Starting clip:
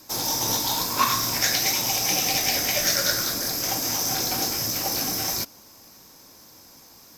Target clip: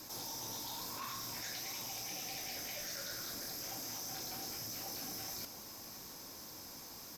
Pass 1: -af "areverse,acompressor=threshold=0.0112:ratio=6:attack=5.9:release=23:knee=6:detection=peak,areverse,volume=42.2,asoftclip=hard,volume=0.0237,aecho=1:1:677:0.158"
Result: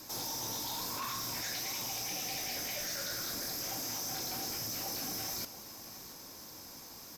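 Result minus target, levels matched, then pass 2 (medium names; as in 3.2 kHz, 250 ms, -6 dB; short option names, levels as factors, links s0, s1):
compression: peak gain reduction -6 dB
-af "areverse,acompressor=threshold=0.00501:ratio=6:attack=5.9:release=23:knee=6:detection=peak,areverse,volume=42.2,asoftclip=hard,volume=0.0237,aecho=1:1:677:0.158"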